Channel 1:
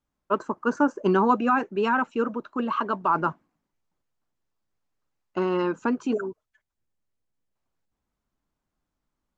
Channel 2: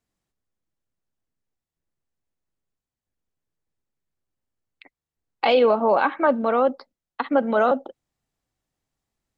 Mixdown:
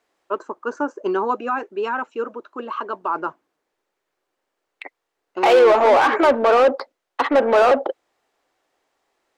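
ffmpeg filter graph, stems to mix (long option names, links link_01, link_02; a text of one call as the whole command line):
ffmpeg -i stem1.wav -i stem2.wav -filter_complex "[0:a]volume=-1.5dB[link_01];[1:a]asplit=2[link_02][link_03];[link_03]highpass=frequency=720:poles=1,volume=26dB,asoftclip=type=tanh:threshold=-7.5dB[link_04];[link_02][link_04]amix=inputs=2:normalize=0,lowpass=frequency=1600:poles=1,volume=-6dB,volume=-0.5dB[link_05];[link_01][link_05]amix=inputs=2:normalize=0,lowshelf=frequency=260:width_type=q:width=1.5:gain=-11" out.wav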